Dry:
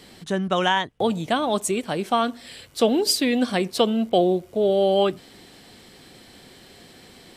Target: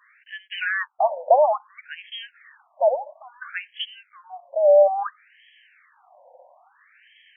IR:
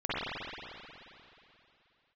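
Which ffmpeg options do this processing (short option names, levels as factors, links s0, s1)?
-filter_complex "[0:a]asettb=1/sr,asplit=3[s0][s1][s2];[s0]atrim=end=0.524[s3];[s1]atrim=start=0.52:end=1.46,asetpts=PTS-STARTPTS,afade=t=in:d=0.004:c=qsin,afade=t=out:st=0.936:d=0.004:c=qsin,aeval=exprs='0.398*(cos(1*acos(clip(val(0)/0.398,-1,1)))-cos(1*PI/2))+0.0794*(cos(5*acos(clip(val(0)/0.398,-1,1)))-cos(5*PI/2))':c=same[s4];[s2]atrim=start=1.456[s5];[s3][s4]acrossfade=d=0.004:c1=hsin:c2=qsin[s6];[s6][s5]acrossfade=d=0.004:c1=qsin:c2=hsin,highpass=f=520:t=q:w=3.6,afftfilt=real='re*between(b*sr/1024,700*pow(2400/700,0.5+0.5*sin(2*PI*0.59*pts/sr))/1.41,700*pow(2400/700,0.5+0.5*sin(2*PI*0.59*pts/sr))*1.41)':imag='im*between(b*sr/1024,700*pow(2400/700,0.5+0.5*sin(2*PI*0.59*pts/sr))/1.41,700*pow(2400/700,0.5+0.5*sin(2*PI*0.59*pts/sr))*1.41)':win_size=1024:overlap=0.75"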